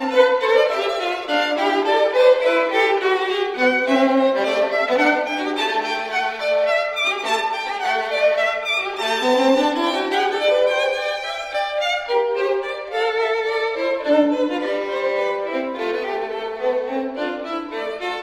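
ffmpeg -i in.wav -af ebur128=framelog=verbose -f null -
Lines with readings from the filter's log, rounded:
Integrated loudness:
  I:         -19.5 LUFS
  Threshold: -29.5 LUFS
Loudness range:
  LRA:         4.2 LU
  Threshold: -39.5 LUFS
  LRA low:   -21.5 LUFS
  LRA high:  -17.3 LUFS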